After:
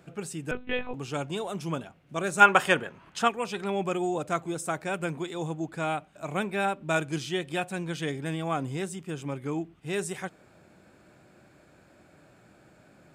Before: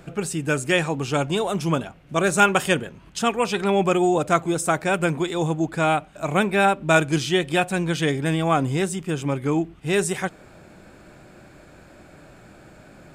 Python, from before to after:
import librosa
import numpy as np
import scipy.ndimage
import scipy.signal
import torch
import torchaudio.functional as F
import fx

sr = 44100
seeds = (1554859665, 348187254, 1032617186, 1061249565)

y = scipy.signal.sosfilt(scipy.signal.butter(2, 75.0, 'highpass', fs=sr, output='sos'), x)
y = fx.lpc_monotone(y, sr, seeds[0], pitch_hz=250.0, order=10, at=(0.51, 0.94))
y = fx.peak_eq(y, sr, hz=1200.0, db=11.5, octaves=2.8, at=(2.4, 3.27), fade=0.02)
y = y * librosa.db_to_amplitude(-9.5)